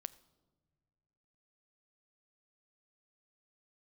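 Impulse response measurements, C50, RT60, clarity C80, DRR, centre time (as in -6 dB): 19.0 dB, no single decay rate, 20.5 dB, 17.0 dB, 3 ms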